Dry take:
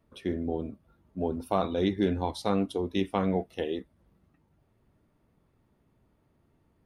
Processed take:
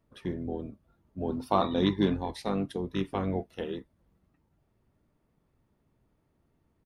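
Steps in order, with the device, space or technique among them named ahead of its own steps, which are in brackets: octave pedal (harmoniser -12 st -7 dB); 1.28–2.17 graphic EQ 250/1000/4000 Hz +5/+9/+9 dB; gain -4 dB

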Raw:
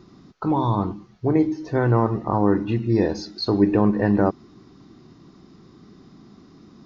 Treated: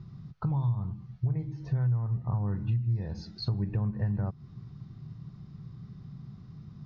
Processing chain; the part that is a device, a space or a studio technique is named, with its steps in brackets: jukebox (LPF 5100 Hz 12 dB/oct; resonant low shelf 200 Hz +13.5 dB, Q 3; compressor 5:1, threshold -19 dBFS, peak gain reduction 20 dB); gain -8.5 dB

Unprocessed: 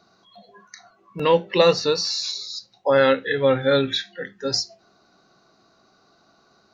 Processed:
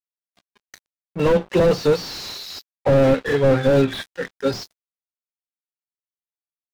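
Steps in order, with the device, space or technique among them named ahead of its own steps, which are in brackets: early transistor amplifier (crossover distortion -41 dBFS; slew limiter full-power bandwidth 50 Hz); gain +7 dB

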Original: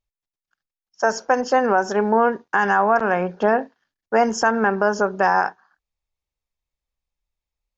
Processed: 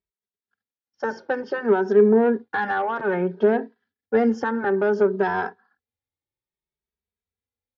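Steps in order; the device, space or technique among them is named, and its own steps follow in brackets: 1.14–1.87 LPF 5800 Hz 24 dB/oct; barber-pole flanger into a guitar amplifier (endless flanger 2.7 ms +0.59 Hz; soft clip -13 dBFS, distortion -17 dB; speaker cabinet 83–3900 Hz, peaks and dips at 92 Hz +5 dB, 230 Hz +7 dB, 410 Hz +9 dB, 640 Hz -6 dB, 1100 Hz -7 dB, 2700 Hz -7 dB)

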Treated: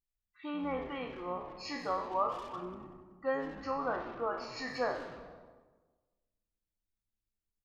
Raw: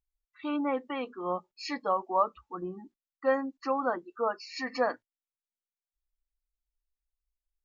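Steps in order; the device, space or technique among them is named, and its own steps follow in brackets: spectral trails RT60 0.52 s; saturated reverb return (on a send at -7.5 dB: reverb RT60 1.3 s, pre-delay 0.114 s + soft clip -31.5 dBFS, distortion -7 dB); 3.71–4.19 on the sum: LPF 5600 Hz 24 dB/oct; frequency-shifting echo 94 ms, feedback 58%, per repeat -110 Hz, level -13 dB; gain -7 dB

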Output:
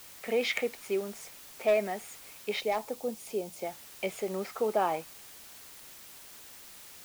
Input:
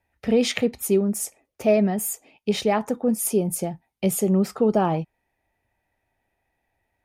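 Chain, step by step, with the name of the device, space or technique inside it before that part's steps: drive-through speaker (BPF 530–3600 Hz; bell 2200 Hz +8.5 dB 0.2 oct; hard clip -15 dBFS, distortion -21 dB; white noise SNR 16 dB); 2.6–3.62 bell 1600 Hz -8.5 dB 1.5 oct; gain -3.5 dB

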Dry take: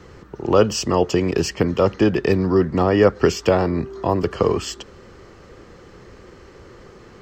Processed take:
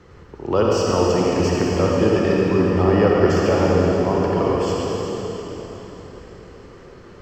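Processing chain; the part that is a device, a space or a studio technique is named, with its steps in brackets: swimming-pool hall (reverb RT60 4.2 s, pre-delay 49 ms, DRR -4 dB; high shelf 5500 Hz -6 dB); gain -4.5 dB

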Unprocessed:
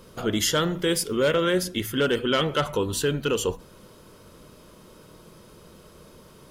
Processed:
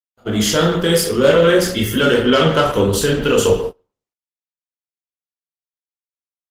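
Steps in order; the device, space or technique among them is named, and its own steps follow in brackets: gate -41 dBFS, range -57 dB; 0.88–1.69 de-hum 241.5 Hz, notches 4; speakerphone in a meeting room (reverb RT60 0.45 s, pre-delay 19 ms, DRR 0 dB; speakerphone echo 0.14 s, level -11 dB; AGC gain up to 9 dB; gate -24 dBFS, range -22 dB; gain +1 dB; Opus 16 kbps 48000 Hz)

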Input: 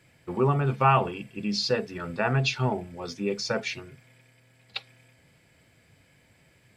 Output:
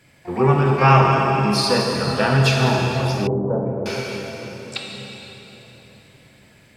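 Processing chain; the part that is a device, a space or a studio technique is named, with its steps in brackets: shimmer-style reverb (harmoniser +12 st -12 dB; reverb RT60 4.1 s, pre-delay 16 ms, DRR -1 dB); 3.27–3.86 inverse Chebyshev low-pass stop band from 4700 Hz, stop band 80 dB; gain +5 dB

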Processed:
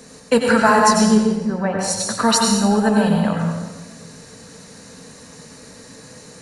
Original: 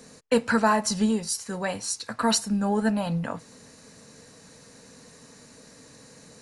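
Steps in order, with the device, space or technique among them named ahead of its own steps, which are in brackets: 1.06–1.79 LPF 1500 Hz 12 dB/oct; bathroom (reverb RT60 1.2 s, pre-delay 85 ms, DRR 0 dB); gain +6 dB

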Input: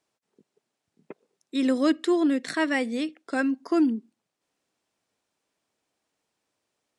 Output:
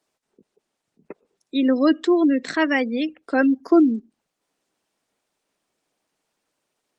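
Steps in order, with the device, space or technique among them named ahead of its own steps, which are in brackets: 3.17–3.8 dynamic EQ 440 Hz, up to +5 dB, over -33 dBFS, Q 0.97; noise-suppressed video call (HPF 140 Hz 12 dB/oct; spectral gate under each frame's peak -30 dB strong; gain +5 dB; Opus 20 kbps 48000 Hz)

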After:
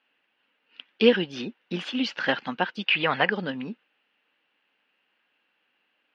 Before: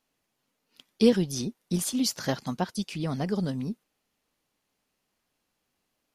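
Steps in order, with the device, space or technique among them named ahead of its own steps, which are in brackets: 2.86–3.3 graphic EQ 125/250/500/1000/2000/4000/8000 Hz +5/-7/+5/+8/+8/+7/-11 dB; phone earpiece (speaker cabinet 390–3100 Hz, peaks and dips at 400 Hz -5 dB, 660 Hz -7 dB, 1100 Hz -4 dB, 1600 Hz +6 dB, 2800 Hz +9 dB); gain +8 dB

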